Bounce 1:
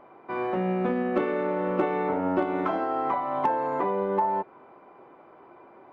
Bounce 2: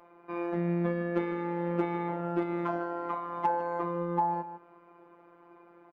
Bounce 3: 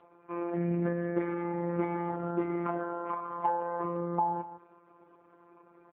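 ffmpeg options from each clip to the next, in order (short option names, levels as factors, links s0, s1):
-filter_complex "[0:a]afftfilt=real='hypot(re,im)*cos(PI*b)':imag='0':win_size=1024:overlap=0.75,asplit=2[s0][s1];[s1]adelay=151.6,volume=0.251,highshelf=f=4000:g=-3.41[s2];[s0][s2]amix=inputs=2:normalize=0,volume=0.841"
-ar 8000 -c:a libopencore_amrnb -b:a 4750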